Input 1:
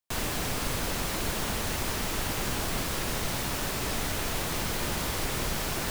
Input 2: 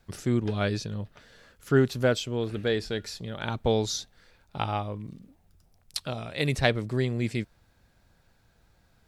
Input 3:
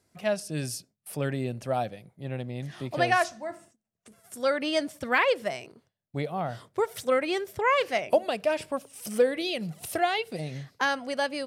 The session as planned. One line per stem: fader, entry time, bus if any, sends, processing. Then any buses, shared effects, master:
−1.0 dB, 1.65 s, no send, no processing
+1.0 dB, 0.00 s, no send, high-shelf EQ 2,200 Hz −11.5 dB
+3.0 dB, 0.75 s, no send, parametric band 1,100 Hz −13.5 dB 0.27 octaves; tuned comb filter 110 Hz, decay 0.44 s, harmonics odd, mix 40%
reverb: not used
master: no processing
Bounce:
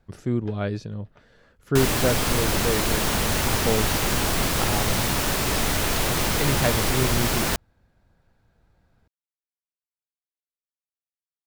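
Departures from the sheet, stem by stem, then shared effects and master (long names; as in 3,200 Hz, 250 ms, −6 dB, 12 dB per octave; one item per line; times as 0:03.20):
stem 1 −1.0 dB → +7.5 dB
stem 3: muted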